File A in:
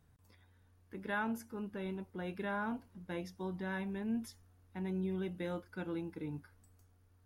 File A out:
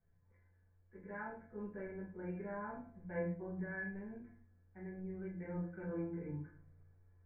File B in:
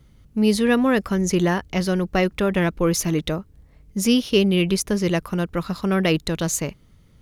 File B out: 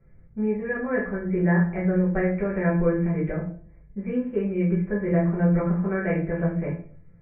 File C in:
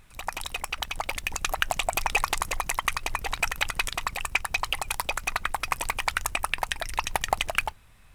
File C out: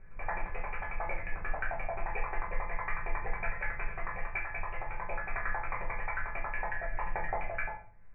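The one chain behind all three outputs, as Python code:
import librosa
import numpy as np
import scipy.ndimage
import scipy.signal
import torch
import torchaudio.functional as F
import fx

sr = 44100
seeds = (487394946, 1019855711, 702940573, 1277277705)

y = fx.peak_eq(x, sr, hz=100.0, db=4.0, octaves=0.85)
y = fx.rider(y, sr, range_db=5, speed_s=0.5)
y = scipy.signal.sosfilt(scipy.signal.cheby1(6, 6, 2400.0, 'lowpass', fs=sr, output='sos'), y)
y = fx.comb_fb(y, sr, f0_hz=170.0, decay_s=0.31, harmonics='all', damping=0.0, mix_pct=80)
y = fx.room_shoebox(y, sr, seeds[0], volume_m3=35.0, walls='mixed', distance_m=1.1)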